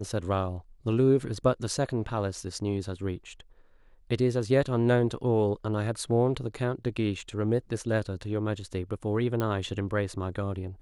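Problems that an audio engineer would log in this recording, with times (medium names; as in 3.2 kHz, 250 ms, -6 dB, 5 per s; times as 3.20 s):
9.40 s: pop -16 dBFS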